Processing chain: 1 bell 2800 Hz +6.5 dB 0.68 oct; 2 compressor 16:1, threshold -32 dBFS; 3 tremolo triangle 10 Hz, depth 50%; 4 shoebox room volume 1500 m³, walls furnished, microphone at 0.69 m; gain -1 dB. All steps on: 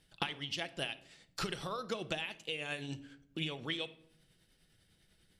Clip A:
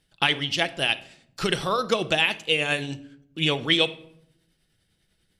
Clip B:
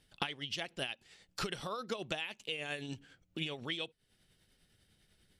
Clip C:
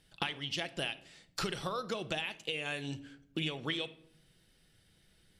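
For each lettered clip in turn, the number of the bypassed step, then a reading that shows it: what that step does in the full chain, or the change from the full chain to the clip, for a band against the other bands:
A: 2, mean gain reduction 13.5 dB; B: 4, echo-to-direct -11.5 dB to none; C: 3, crest factor change -1.5 dB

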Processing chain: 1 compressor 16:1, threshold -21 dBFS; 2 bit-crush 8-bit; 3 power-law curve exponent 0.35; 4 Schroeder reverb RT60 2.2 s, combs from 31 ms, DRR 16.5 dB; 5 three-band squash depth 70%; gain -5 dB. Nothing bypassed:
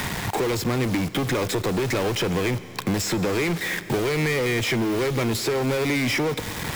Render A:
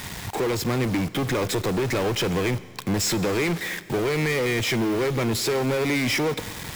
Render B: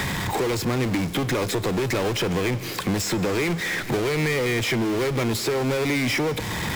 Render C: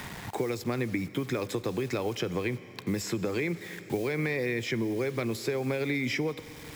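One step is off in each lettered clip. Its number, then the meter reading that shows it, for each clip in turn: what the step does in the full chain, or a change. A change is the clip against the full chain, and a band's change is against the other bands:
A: 5, crest factor change -5.5 dB; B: 2, distortion -26 dB; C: 3, 8 kHz band -3.5 dB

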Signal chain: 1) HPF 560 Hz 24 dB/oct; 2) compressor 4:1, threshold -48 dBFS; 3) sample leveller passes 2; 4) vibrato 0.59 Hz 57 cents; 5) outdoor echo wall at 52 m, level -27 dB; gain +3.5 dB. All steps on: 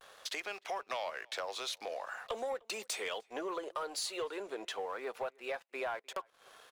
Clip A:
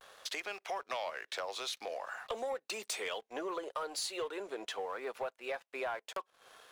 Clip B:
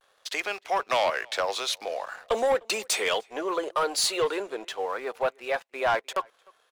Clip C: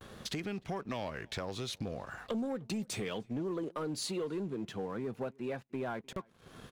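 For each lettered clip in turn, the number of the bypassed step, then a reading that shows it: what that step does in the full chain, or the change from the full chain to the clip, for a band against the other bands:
5, echo-to-direct -28.0 dB to none; 2, mean gain reduction 9.5 dB; 1, 250 Hz band +15.5 dB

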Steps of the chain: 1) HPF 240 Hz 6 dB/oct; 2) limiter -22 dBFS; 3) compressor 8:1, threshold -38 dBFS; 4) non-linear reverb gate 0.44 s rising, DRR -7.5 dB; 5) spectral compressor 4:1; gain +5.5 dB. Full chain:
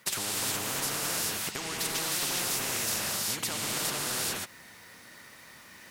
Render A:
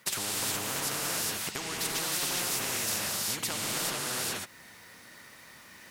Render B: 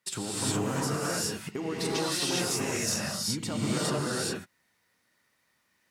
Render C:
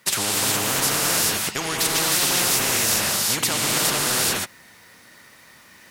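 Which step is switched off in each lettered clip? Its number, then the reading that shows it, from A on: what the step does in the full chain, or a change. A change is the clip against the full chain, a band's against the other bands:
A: 2, mean gain reduction 2.5 dB; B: 5, 250 Hz band +10.0 dB; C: 3, momentary loudness spread change -16 LU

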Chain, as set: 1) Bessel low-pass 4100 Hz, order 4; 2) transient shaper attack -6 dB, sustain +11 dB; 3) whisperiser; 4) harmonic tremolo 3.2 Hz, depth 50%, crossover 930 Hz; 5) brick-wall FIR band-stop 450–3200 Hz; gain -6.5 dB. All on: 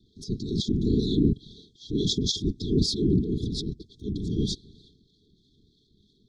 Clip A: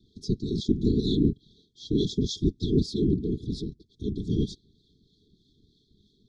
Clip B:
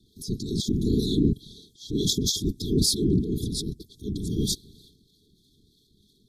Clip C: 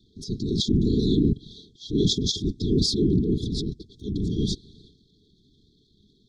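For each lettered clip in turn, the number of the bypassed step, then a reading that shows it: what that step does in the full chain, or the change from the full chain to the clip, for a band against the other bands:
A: 2, 8 kHz band -7.5 dB; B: 1, 8 kHz band +8.5 dB; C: 4, momentary loudness spread change +1 LU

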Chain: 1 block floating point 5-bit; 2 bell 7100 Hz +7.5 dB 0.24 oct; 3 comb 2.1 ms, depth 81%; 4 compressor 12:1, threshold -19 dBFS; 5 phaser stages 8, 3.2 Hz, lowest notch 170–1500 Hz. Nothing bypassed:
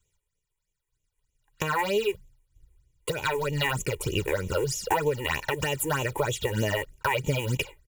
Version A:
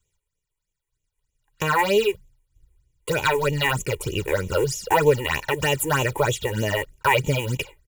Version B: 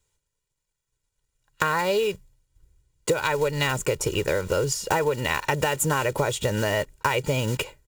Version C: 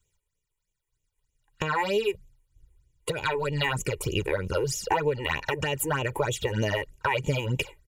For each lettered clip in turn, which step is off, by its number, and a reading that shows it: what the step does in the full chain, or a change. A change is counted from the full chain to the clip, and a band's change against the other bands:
4, mean gain reduction 4.0 dB; 5, 8 kHz band +2.0 dB; 1, distortion -20 dB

